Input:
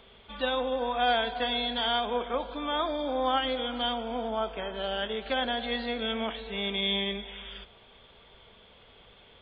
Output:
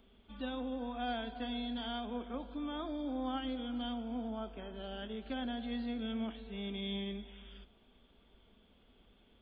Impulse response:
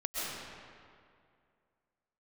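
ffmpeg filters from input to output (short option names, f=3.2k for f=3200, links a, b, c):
-af "equalizer=f=125:t=o:w=1:g=-12,equalizer=f=250:t=o:w=1:g=7,equalizer=f=500:t=o:w=1:g=-10,equalizer=f=1k:t=o:w=1:g=-9,equalizer=f=2k:t=o:w=1:g=-10,equalizer=f=4k:t=o:w=1:g=-11,volume=-2.5dB"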